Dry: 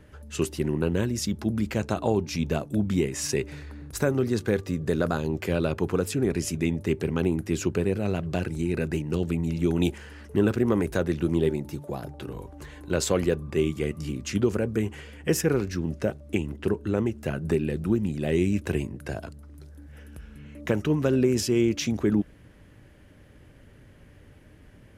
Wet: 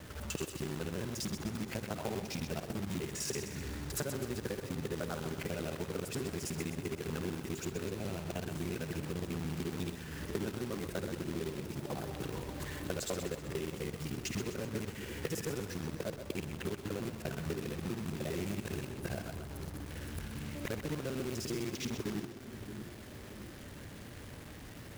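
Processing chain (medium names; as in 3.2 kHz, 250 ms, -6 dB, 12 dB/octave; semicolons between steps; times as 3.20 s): time reversed locally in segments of 50 ms; high-pass 120 Hz 6 dB/octave; bass shelf 160 Hz +5 dB; compression 5:1, threshold -38 dBFS, peak gain reduction 18.5 dB; dynamic bell 280 Hz, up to -3 dB, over -48 dBFS, Q 1.5; companded quantiser 4-bit; two-band feedback delay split 430 Hz, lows 624 ms, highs 127 ms, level -8.5 dB; trim +2 dB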